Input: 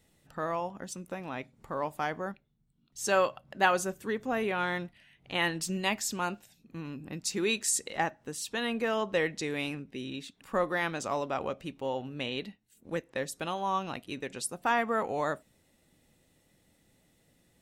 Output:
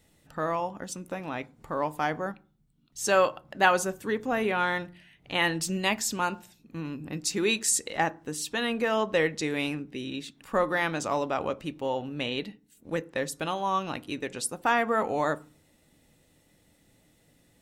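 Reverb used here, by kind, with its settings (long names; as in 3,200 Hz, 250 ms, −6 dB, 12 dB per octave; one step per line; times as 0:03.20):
feedback delay network reverb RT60 0.38 s, low-frequency decay 1.5×, high-frequency decay 0.3×, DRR 15 dB
level +3.5 dB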